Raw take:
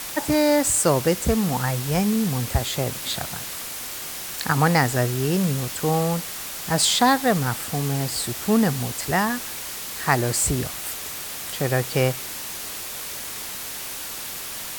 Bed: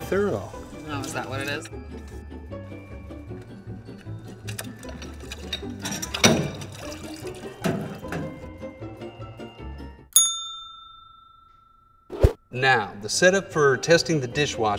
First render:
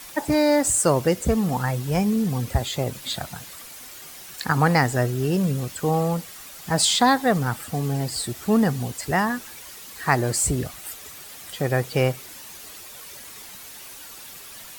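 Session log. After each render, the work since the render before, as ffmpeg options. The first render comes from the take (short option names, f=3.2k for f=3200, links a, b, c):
-af "afftdn=nr=10:nf=-33"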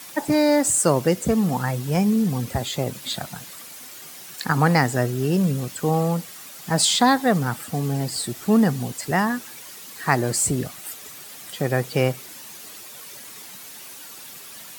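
-af "highpass=170,bass=f=250:g=6,treble=f=4k:g=1"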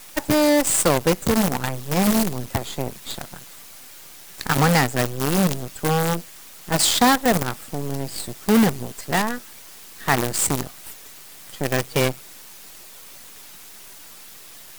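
-af "acrusher=bits=4:dc=4:mix=0:aa=0.000001"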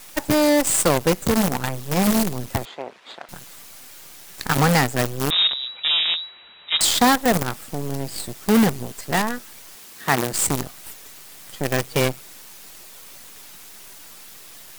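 -filter_complex "[0:a]asettb=1/sr,asplit=3[a][b][c];[a]atrim=end=2.654[d];[b]atrim=start=2.65:end=3.29,asetpts=PTS-STARTPTS,afade=t=in:d=0.004:c=qsin,afade=t=out:st=0.636:d=0.004:c=qsin,highpass=500,lowpass=2.6k[e];[c]atrim=start=3.286[f];[d][e]acrossfade=d=0.004:c1=hsin:c2=qsin[g];[g][f]acrossfade=d=0.004:c1=qsin:c2=hsin,asettb=1/sr,asplit=3[h][i][j];[h]atrim=end=5.304[k];[i]atrim=start=5.3:end=6.81,asetpts=PTS-STARTPTS,afade=t=in:d=0.004:c=qsin,afade=t=out:st=1.506:d=0.004:c=qsin,lowpass=f=3.3k:t=q:w=0.5098,lowpass=f=3.3k:t=q:w=0.6013,lowpass=f=3.3k:t=q:w=0.9,lowpass=f=3.3k:t=q:w=2.563,afreqshift=-3900[l];[j]atrim=start=6.806[m];[k][l]acrossfade=d=0.004:c1=hsin:c2=qsin[n];[n][m]acrossfade=d=0.004:c1=qsin:c2=hsin,asettb=1/sr,asplit=3[o][p][q];[o]atrim=end=9.754[r];[p]atrim=start=9.75:end=10.33,asetpts=PTS-STARTPTS,afade=t=in:d=0.004:c=qsin,afade=t=out:st=0.576:d=0.004:c=qsin,highpass=110[s];[q]atrim=start=10.326[t];[r][s]acrossfade=d=0.004:c1=hsin:c2=qsin[u];[u][t]acrossfade=d=0.004:c1=qsin:c2=hsin"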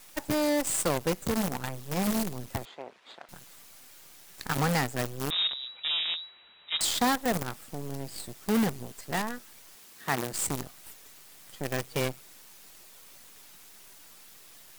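-af "volume=-9.5dB"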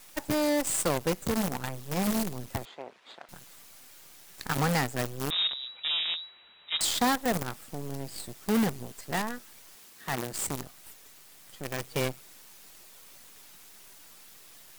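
-filter_complex "[0:a]asettb=1/sr,asplit=3[a][b][c];[a]atrim=end=9.894[d];[b]atrim=start=9.89:end=11.81,asetpts=PTS-STARTPTS,afade=t=in:d=0.004:c=qsin,afade=t=out:st=1.916:d=0.004:c=qsin,aeval=exprs='(tanh(12.6*val(0)+0.35)-tanh(0.35))/12.6':c=same[e];[c]atrim=start=11.806[f];[d][e]acrossfade=d=0.004:c1=hsin:c2=qsin[g];[g][f]acrossfade=d=0.004:c1=qsin:c2=hsin"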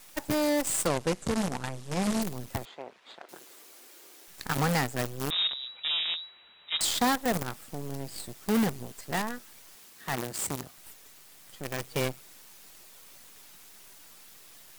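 -filter_complex "[0:a]asettb=1/sr,asplit=3[a][b][c];[a]atrim=end=0.874[d];[b]atrim=start=0.87:end=2.22,asetpts=PTS-STARTPTS,afade=t=in:d=0.004:c=qsin,afade=t=out:st=1.346:d=0.004:c=qsin,lowpass=f=10k:w=0.5412,lowpass=f=10k:w=1.3066[e];[c]atrim=start=2.216[f];[d][e]acrossfade=d=0.004:c1=hsin:c2=qsin[g];[g][f]acrossfade=d=0.004:c1=qsin:c2=hsin,asettb=1/sr,asplit=3[h][i][j];[h]atrim=end=3.224[k];[i]atrim=start=3.22:end=4.28,asetpts=PTS-STARTPTS,afade=t=in:d=0.004:c=qsin,afade=t=out:st=1.056:d=0.004:c=qsin,highpass=f=360:t=q:w=3.2[l];[j]atrim=start=4.276[m];[k][l]acrossfade=d=0.004:c1=hsin:c2=qsin[n];[n][m]acrossfade=d=0.004:c1=qsin:c2=hsin,asettb=1/sr,asplit=3[o][p][q];[o]atrim=end=10.244[r];[p]atrim=start=10.24:end=10.78,asetpts=PTS-STARTPTS,afade=t=in:d=0.004:c=qsin,afade=t=out:st=0.536:d=0.004:c=qsin,highpass=51[s];[q]atrim=start=10.776[t];[r][s]acrossfade=d=0.004:c1=hsin:c2=qsin[u];[u][t]acrossfade=d=0.004:c1=qsin:c2=hsin"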